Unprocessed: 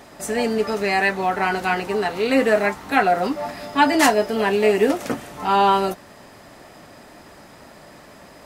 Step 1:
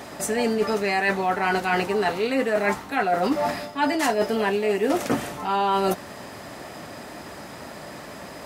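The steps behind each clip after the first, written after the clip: HPF 60 Hz; reverse; compressor 12:1, threshold -25 dBFS, peak gain reduction 15.5 dB; reverse; gain +6 dB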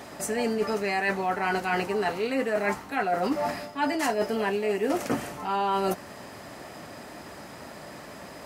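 dynamic EQ 3600 Hz, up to -6 dB, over -56 dBFS, Q 6.9; gain -4 dB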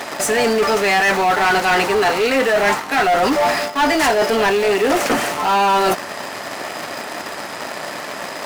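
in parallel at -6 dB: bit-crush 6-bit; on the sum: overdrive pedal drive 21 dB, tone 6300 Hz, clips at -9.5 dBFS; gain +1.5 dB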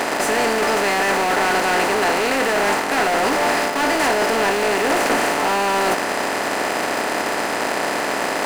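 per-bin compression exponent 0.4; gain -8.5 dB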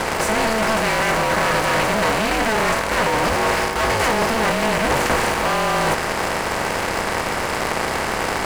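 ring modulator 220 Hz; gain +2.5 dB

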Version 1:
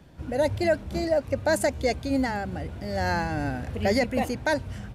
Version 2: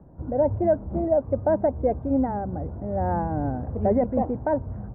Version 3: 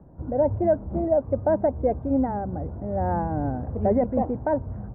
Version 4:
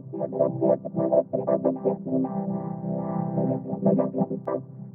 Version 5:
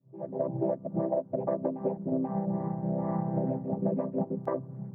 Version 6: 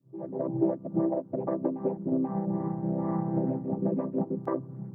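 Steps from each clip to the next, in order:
LPF 1000 Hz 24 dB/oct; gain +2.5 dB
nothing audible
chord vocoder major triad, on C3; reverse echo 0.485 s -5 dB; upward expander 1.5:1, over -30 dBFS; gain +1.5 dB
opening faded in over 0.67 s; compressor 6:1, threshold -26 dBFS, peak gain reduction 11 dB
thirty-one-band EQ 315 Hz +9 dB, 630 Hz -5 dB, 1250 Hz +4 dB

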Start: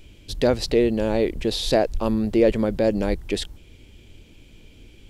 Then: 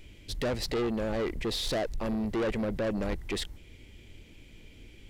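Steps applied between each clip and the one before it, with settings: bell 2000 Hz +8.5 dB 0.3 oct; soft clip -23 dBFS, distortion -7 dB; gain -3.5 dB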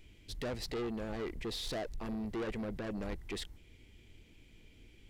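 notch 560 Hz, Q 12; gain -7.5 dB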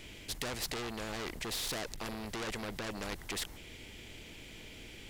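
spectral compressor 2:1; gain +8.5 dB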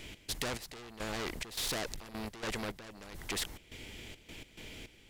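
step gate "x.xx...xxx.xxx." 105 bpm -12 dB; gain +2 dB

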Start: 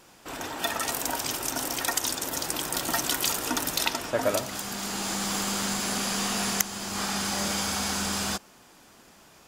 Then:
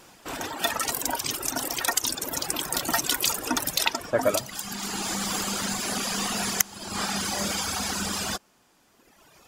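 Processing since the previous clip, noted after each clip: reverb removal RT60 1.8 s; gain +3.5 dB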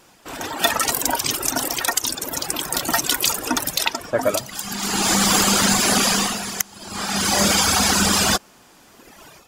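AGC gain up to 14 dB; gain -1 dB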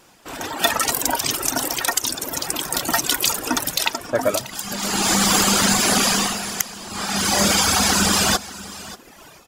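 echo 0.586 s -17.5 dB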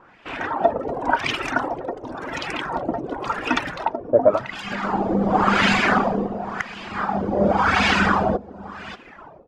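LFO low-pass sine 0.92 Hz 480–2600 Hz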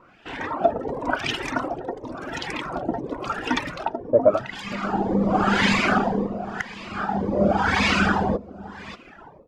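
cascading phaser rising 1.9 Hz

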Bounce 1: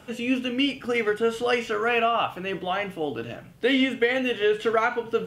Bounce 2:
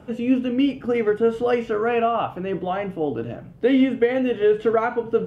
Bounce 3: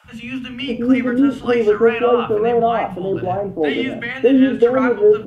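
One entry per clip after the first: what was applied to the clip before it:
tilt shelf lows +9 dB, about 1400 Hz; gain -2.5 dB
three bands offset in time highs, lows, mids 40/600 ms, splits 180/970 Hz; gain +6.5 dB

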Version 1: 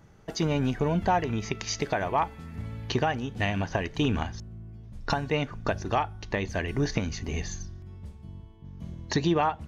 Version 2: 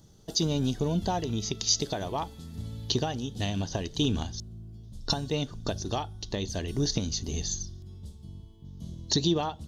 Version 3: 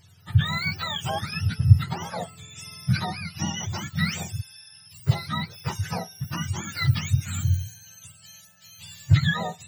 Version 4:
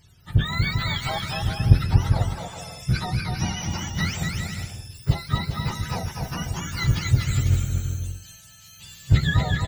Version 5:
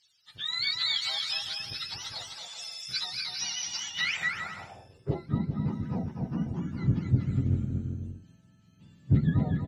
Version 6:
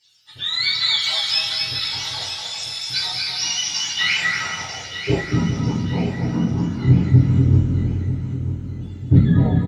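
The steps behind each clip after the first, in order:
EQ curve 340 Hz 0 dB, 2300 Hz -13 dB, 3500 Hz +9 dB; gain -1 dB
spectrum mirrored in octaves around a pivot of 760 Hz; gain +2.5 dB
octaver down 1 oct, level -5 dB; on a send: bouncing-ball echo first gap 0.24 s, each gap 0.65×, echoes 5; on the sum: gain -1 dB
band-pass sweep 4400 Hz -> 240 Hz, 3.8–5.37; AGC gain up to 6.5 dB
feedback echo 0.945 s, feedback 38%, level -10.5 dB; reverb, pre-delay 3 ms, DRR -8 dB; gain +1.5 dB

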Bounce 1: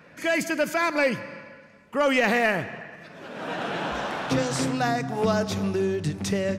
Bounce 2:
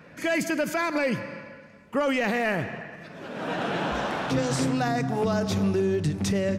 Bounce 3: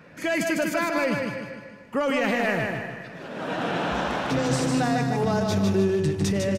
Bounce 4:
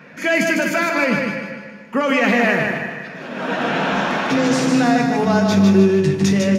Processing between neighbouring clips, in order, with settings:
low shelf 420 Hz +4.5 dB; limiter -17 dBFS, peak gain reduction 7 dB
feedback echo 0.152 s, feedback 43%, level -4 dB
reverb RT60 0.55 s, pre-delay 3 ms, DRR 6.5 dB; gain +2 dB

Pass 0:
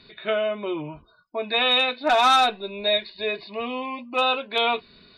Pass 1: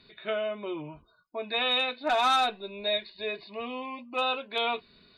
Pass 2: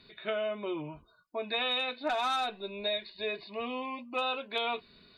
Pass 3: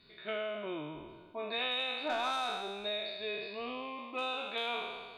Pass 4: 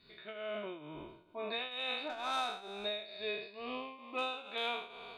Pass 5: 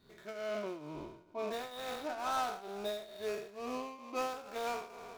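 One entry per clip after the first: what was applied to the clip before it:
notch 5500 Hz, Q 12; gain -6.5 dB
compressor, threshold -28 dBFS, peak gain reduction 7 dB
spectral trails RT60 1.54 s; gain -6 dB
tremolo triangle 2.2 Hz, depth 80%; gain +1 dB
median filter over 15 samples; gain +3 dB

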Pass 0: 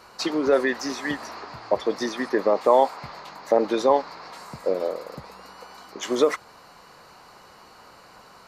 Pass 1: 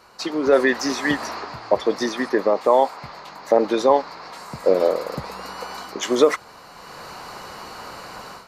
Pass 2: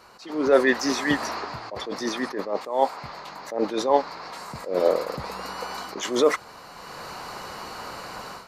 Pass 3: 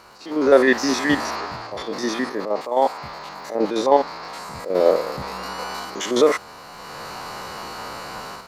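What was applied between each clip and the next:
AGC gain up to 14.5 dB; gain -2 dB
attack slew limiter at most 120 dB/s
stepped spectrum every 50 ms; crackle 100/s -49 dBFS; gain +5 dB

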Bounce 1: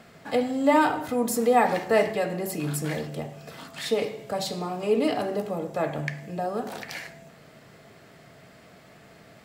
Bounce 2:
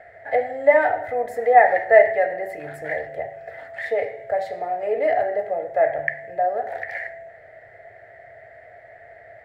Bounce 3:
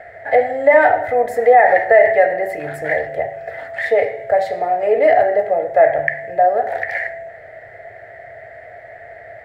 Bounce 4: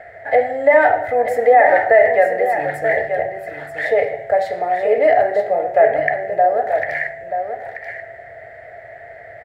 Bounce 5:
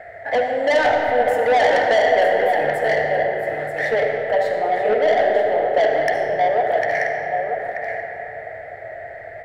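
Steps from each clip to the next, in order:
EQ curve 110 Hz 0 dB, 160 Hz -19 dB, 230 Hz -21 dB, 690 Hz +12 dB, 1100 Hz -16 dB, 1900 Hz +13 dB, 2600 Hz -12 dB, 5500 Hz -21 dB; gain +1 dB
maximiser +9 dB; gain -1 dB
echo 0.933 s -8 dB; gain -1 dB
soft clip -14 dBFS, distortion -9 dB; reverb RT60 4.8 s, pre-delay 30 ms, DRR 2.5 dB

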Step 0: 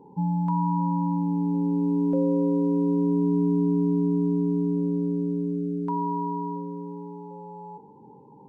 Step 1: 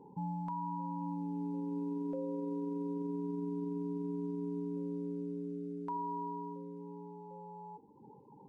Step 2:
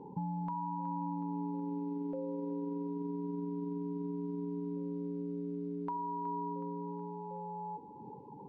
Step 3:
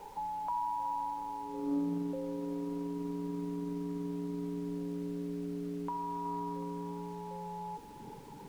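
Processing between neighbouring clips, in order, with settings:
reverb removal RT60 0.81 s; dynamic EQ 190 Hz, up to -7 dB, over -41 dBFS, Q 1; limiter -26 dBFS, peak gain reduction 6 dB; gain -5 dB
compressor, threshold -41 dBFS, peak gain reduction 6.5 dB; air absorption 170 m; thinning echo 0.37 s, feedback 59%, high-pass 430 Hz, level -11 dB; gain +7 dB
high-pass sweep 670 Hz -> 67 Hz, 1.4–2.3; added noise pink -59 dBFS; Doppler distortion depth 0.1 ms

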